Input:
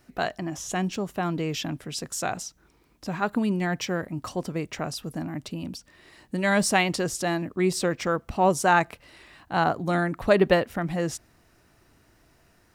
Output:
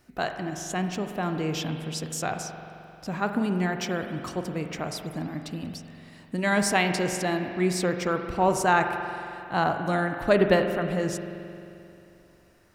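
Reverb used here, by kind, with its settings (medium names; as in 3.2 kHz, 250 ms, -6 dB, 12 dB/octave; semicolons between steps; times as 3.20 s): spring tank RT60 2.8 s, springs 44 ms, chirp 60 ms, DRR 6 dB; trim -1.5 dB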